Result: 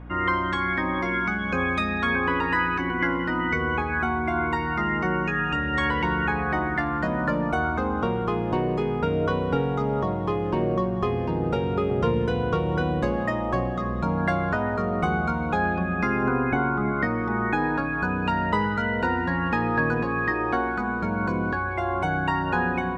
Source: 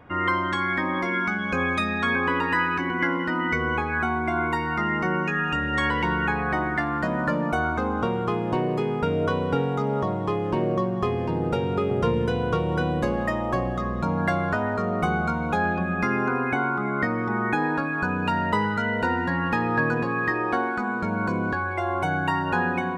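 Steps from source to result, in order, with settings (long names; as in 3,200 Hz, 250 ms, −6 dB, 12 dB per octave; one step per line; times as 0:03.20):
0:16.23–0:16.92: spectral tilt −1.5 dB per octave
mains hum 60 Hz, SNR 16 dB
high-frequency loss of the air 58 metres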